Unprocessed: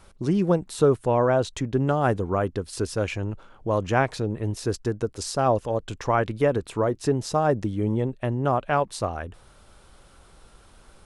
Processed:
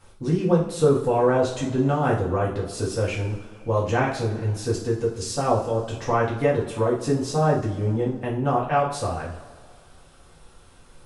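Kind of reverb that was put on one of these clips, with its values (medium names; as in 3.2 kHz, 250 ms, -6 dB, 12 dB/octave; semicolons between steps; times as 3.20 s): two-slope reverb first 0.42 s, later 2.1 s, from -18 dB, DRR -6 dB; trim -6 dB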